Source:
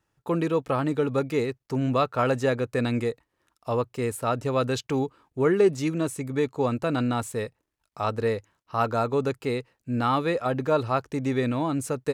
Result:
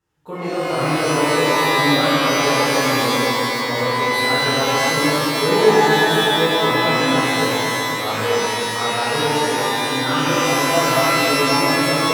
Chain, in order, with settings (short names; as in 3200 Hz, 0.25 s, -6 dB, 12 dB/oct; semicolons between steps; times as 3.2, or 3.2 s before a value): repeated pitch sweeps +2 st, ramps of 0.727 s; darkening echo 0.251 s, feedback 75%, low-pass 960 Hz, level -5.5 dB; shimmer reverb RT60 2.1 s, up +12 st, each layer -2 dB, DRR -10 dB; gain -6 dB